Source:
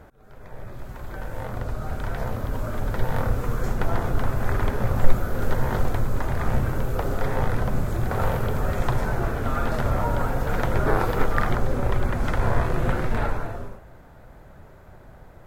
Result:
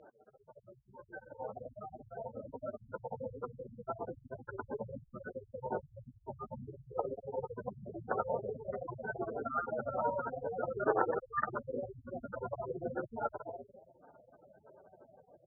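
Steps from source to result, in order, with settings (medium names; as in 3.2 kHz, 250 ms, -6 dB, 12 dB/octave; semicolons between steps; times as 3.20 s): spectral gate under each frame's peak -15 dB strong; band-pass 420–3900 Hz; peaking EQ 910 Hz -2.5 dB; trim -1 dB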